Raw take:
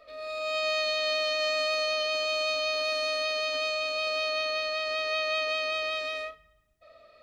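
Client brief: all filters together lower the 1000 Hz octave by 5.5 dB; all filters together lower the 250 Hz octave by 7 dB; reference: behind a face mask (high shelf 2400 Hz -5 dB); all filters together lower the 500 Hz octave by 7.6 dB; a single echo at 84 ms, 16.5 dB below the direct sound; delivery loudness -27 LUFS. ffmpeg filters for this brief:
-af "equalizer=f=250:t=o:g=-5.5,equalizer=f=500:t=o:g=-7,equalizer=f=1k:t=o:g=-5,highshelf=f=2.4k:g=-5,aecho=1:1:84:0.15,volume=5dB"

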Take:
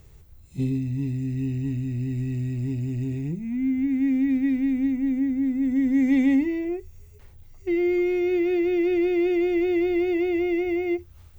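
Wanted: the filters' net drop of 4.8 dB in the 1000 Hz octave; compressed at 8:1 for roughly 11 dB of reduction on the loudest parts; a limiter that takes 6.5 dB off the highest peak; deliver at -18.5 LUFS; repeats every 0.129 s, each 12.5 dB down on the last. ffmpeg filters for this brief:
-af "equalizer=f=1k:t=o:g=-9,acompressor=threshold=-29dB:ratio=8,alimiter=level_in=4.5dB:limit=-24dB:level=0:latency=1,volume=-4.5dB,aecho=1:1:129|258|387:0.237|0.0569|0.0137,volume=15.5dB"

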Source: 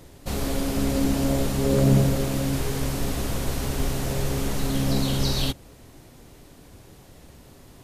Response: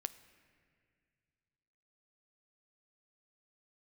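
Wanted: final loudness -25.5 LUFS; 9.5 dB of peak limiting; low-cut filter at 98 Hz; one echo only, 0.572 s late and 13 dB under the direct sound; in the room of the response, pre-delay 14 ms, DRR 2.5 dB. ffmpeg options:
-filter_complex "[0:a]highpass=98,alimiter=limit=-17dB:level=0:latency=1,aecho=1:1:572:0.224,asplit=2[a][b];[1:a]atrim=start_sample=2205,adelay=14[c];[b][c]afir=irnorm=-1:irlink=0,volume=-0.5dB[d];[a][d]amix=inputs=2:normalize=0,volume=-1dB"

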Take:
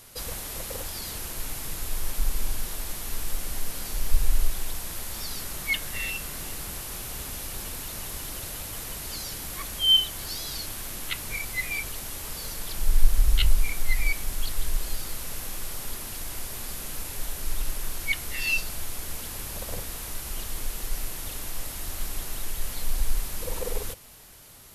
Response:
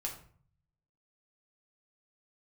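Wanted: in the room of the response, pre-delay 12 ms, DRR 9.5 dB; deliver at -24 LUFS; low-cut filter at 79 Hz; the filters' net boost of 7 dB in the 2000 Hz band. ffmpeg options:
-filter_complex "[0:a]highpass=79,equalizer=f=2k:t=o:g=8.5,asplit=2[a][b];[1:a]atrim=start_sample=2205,adelay=12[c];[b][c]afir=irnorm=-1:irlink=0,volume=-10dB[d];[a][d]amix=inputs=2:normalize=0,volume=3.5dB"

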